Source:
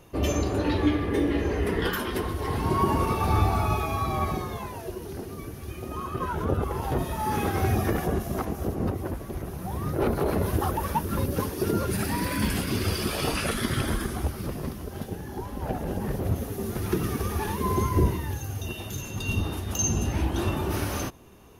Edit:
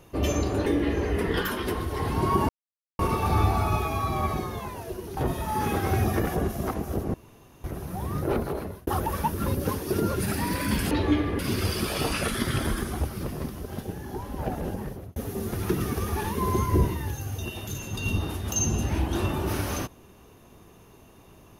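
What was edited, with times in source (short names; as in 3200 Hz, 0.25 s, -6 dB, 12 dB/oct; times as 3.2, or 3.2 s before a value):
0.66–1.14 move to 12.62
2.97 insert silence 0.50 s
5.15–6.88 cut
8.85–9.35 room tone
9.96–10.58 fade out
15.85–16.39 fade out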